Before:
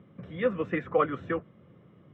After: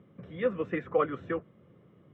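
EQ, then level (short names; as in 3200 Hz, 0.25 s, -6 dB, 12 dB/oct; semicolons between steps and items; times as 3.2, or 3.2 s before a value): bell 420 Hz +3 dB 0.77 oct; -3.5 dB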